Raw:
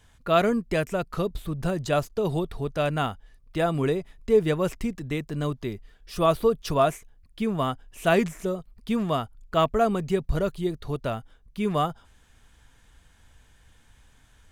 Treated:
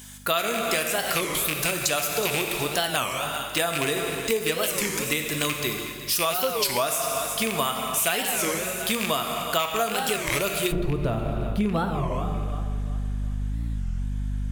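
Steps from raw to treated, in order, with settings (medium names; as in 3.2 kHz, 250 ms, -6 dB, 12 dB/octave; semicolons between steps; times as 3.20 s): rattle on loud lows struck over -27 dBFS, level -23 dBFS; treble shelf 6.7 kHz +7.5 dB; thinning echo 369 ms, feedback 38%, high-pass 160 Hz, level -15.5 dB; plate-style reverb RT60 1.8 s, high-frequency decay 0.9×, DRR 4 dB; hum 50 Hz, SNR 15 dB; tilt EQ +4 dB/octave, from 10.71 s -1.5 dB/octave; compression 10:1, threshold -28 dBFS, peak gain reduction 14.5 dB; warped record 33 1/3 rpm, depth 250 cents; trim +7 dB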